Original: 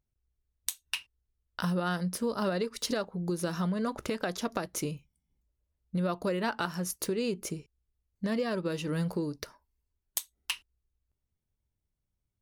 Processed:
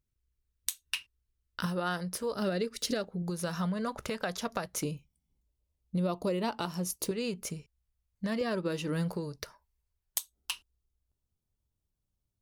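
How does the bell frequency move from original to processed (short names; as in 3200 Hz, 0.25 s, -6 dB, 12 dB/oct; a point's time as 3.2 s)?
bell -10.5 dB 0.6 oct
740 Hz
from 1.66 s 220 Hz
from 2.35 s 1000 Hz
from 3.22 s 310 Hz
from 4.83 s 1600 Hz
from 7.11 s 340 Hz
from 8.41 s 81 Hz
from 9.14 s 290 Hz
from 10.18 s 2000 Hz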